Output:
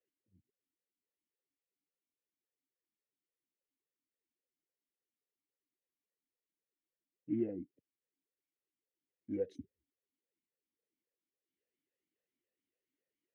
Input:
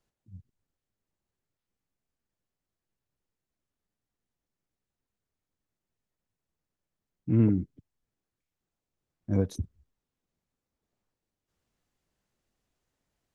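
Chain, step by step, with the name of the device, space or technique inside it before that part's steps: talk box (valve stage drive 18 dB, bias 0.4; talking filter e-i 3.6 Hz); trim +2.5 dB

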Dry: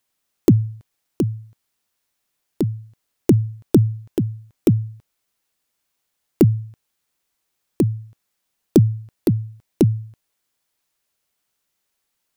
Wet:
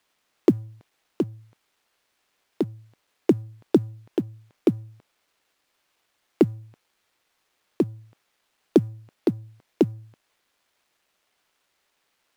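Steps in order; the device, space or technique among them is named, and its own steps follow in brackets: phone line with mismatched companding (band-pass 310–3600 Hz; companding laws mixed up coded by mu)

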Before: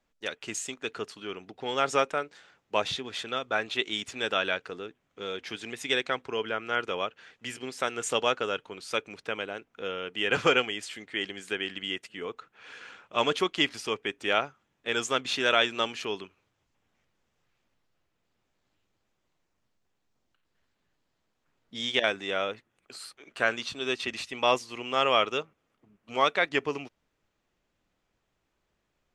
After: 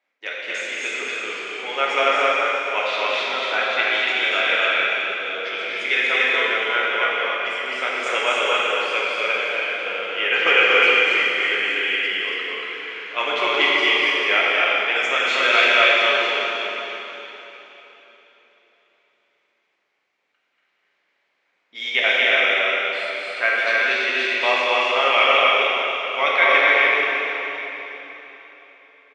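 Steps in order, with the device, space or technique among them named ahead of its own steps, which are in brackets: station announcement (band-pass 480–4300 Hz; peaking EQ 2.2 kHz +11 dB 0.43 oct; loudspeakers at several distances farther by 81 m -3 dB, 96 m -4 dB; reverberation RT60 3.8 s, pre-delay 3 ms, DRR -5 dB)

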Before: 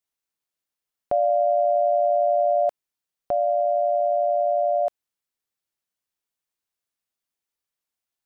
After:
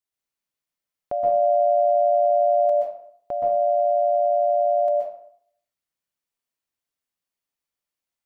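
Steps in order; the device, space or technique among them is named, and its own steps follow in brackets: bathroom (reverberation RT60 0.60 s, pre-delay 118 ms, DRR -2.5 dB); trim -4.5 dB

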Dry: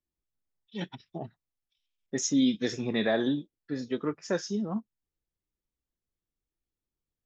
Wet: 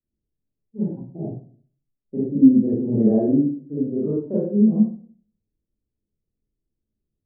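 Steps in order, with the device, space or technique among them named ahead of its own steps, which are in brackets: next room (low-pass 530 Hz 24 dB/octave; reverberation RT60 0.45 s, pre-delay 33 ms, DRR -9 dB)

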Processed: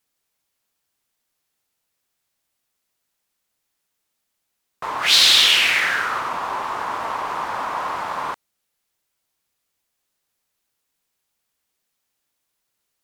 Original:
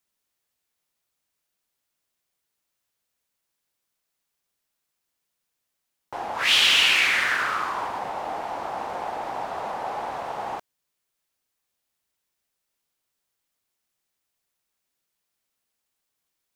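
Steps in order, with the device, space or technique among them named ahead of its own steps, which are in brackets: nightcore (tape speed +27%); trim +5 dB

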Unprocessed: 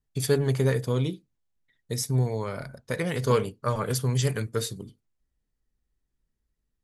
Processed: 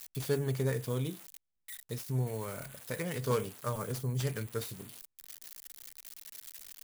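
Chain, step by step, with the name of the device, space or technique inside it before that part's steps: budget class-D amplifier (dead-time distortion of 0.1 ms; zero-crossing glitches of -22.5 dBFS); 3.63–4.19 s: peaking EQ 2.3 kHz +0.5 dB -> -10.5 dB 2.8 oct; trim -8 dB

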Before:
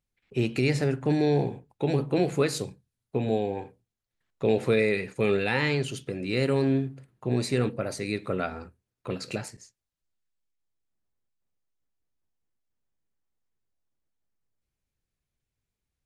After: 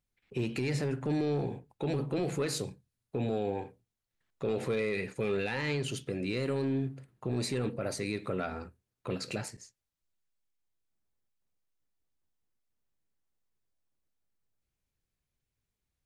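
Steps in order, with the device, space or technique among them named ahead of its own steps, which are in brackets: soft clipper into limiter (saturation -16 dBFS, distortion -19 dB; peak limiter -23 dBFS, peak gain reduction 6.5 dB); trim -1 dB

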